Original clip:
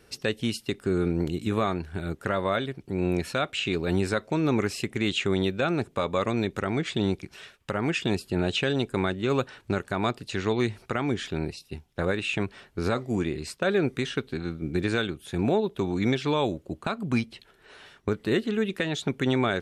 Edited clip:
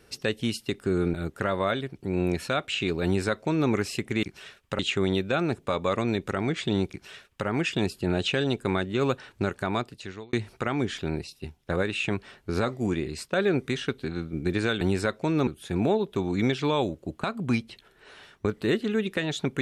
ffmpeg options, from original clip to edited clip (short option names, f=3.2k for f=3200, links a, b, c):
-filter_complex "[0:a]asplit=7[a][b][c][d][e][f][g];[a]atrim=end=1.142[h];[b]atrim=start=1.988:end=5.082[i];[c]atrim=start=7.198:end=7.762[j];[d]atrim=start=5.078:end=10.62,asetpts=PTS-STARTPTS,afade=t=out:st=4.862:d=0.68[k];[e]atrim=start=10.62:end=15.102,asetpts=PTS-STARTPTS,afade=t=in:d=0.004:c=hsin[l];[f]atrim=start=3.888:end=4.552[m];[g]atrim=start=15.098[n];[h][i]acrossfade=d=0.004:c1=hsin:c2=hsin[o];[o][j]acrossfade=d=0.004:c1=hsin:c2=hsin[p];[k][l]concat=n=2:v=0:a=1[q];[p][q]acrossfade=d=0.004:c1=hsin:c2=hsin[r];[r][m]acrossfade=d=0.004:c1=hsin:c2=hsin[s];[s][n]acrossfade=d=0.004:c1=hsin:c2=hsin"